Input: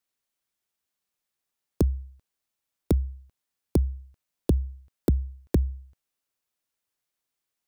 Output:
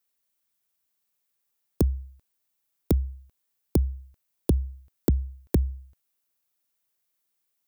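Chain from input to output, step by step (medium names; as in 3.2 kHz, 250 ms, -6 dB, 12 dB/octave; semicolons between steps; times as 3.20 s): treble shelf 11 kHz +11.5 dB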